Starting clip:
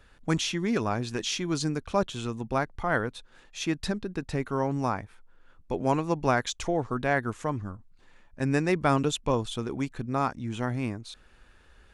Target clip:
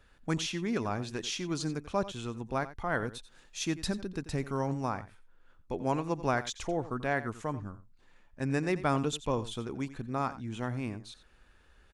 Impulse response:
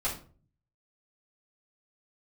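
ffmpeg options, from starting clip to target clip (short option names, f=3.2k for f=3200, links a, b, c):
-filter_complex "[0:a]asettb=1/sr,asplit=3[a][b][c];[a]atrim=end=3.024[d];[b]atrim=start=3.02:end=4.74,asetpts=PTS-STARTPTS,afade=t=in:d=0.004:c=qsin,afade=t=out:st=1.716:d=0.004:c=qsin,bass=f=250:g=3,treble=f=4k:g=7[e];[c]atrim=start=4.736[f];[d][e]acrossfade=d=0.004:c1=hsin:c2=qsin[g];[g][f]acrossfade=d=0.004:c1=qsin:c2=hsin,asplit=2[h][i];[i]aecho=0:1:88:0.178[j];[h][j]amix=inputs=2:normalize=0,volume=-5dB"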